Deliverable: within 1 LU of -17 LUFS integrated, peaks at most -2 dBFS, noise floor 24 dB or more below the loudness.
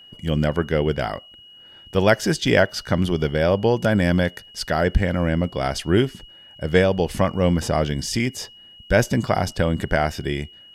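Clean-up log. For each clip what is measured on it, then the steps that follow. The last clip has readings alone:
steady tone 2900 Hz; tone level -44 dBFS; loudness -21.5 LUFS; peak -4.0 dBFS; loudness target -17.0 LUFS
-> notch 2900 Hz, Q 30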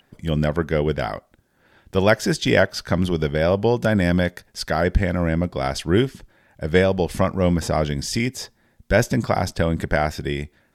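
steady tone none; loudness -21.5 LUFS; peak -3.5 dBFS; loudness target -17.0 LUFS
-> gain +4.5 dB; limiter -2 dBFS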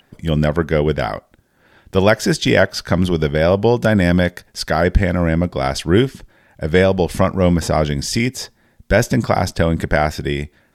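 loudness -17.5 LUFS; peak -2.0 dBFS; noise floor -58 dBFS

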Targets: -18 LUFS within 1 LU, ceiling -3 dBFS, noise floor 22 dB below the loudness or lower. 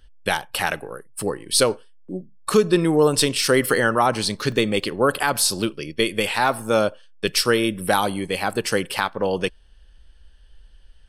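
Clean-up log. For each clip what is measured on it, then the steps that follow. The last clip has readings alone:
dropouts 1; longest dropout 1.1 ms; loudness -21.5 LUFS; peak -5.0 dBFS; loudness target -18.0 LUFS
-> interpolate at 4.52, 1.1 ms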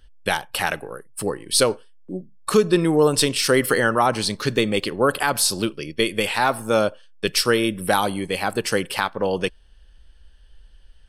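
dropouts 0; loudness -21.5 LUFS; peak -5.0 dBFS; loudness target -18.0 LUFS
-> gain +3.5 dB; limiter -3 dBFS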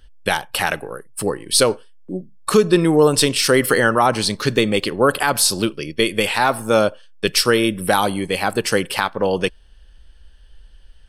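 loudness -18.0 LUFS; peak -3.0 dBFS; noise floor -46 dBFS

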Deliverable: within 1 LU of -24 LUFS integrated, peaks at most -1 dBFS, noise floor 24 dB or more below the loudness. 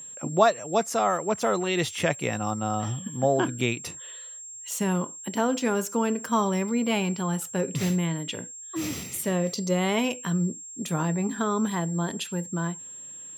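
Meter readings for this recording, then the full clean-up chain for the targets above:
steady tone 7500 Hz; tone level -39 dBFS; loudness -27.0 LUFS; peak -7.0 dBFS; loudness target -24.0 LUFS
-> notch 7500 Hz, Q 30; gain +3 dB

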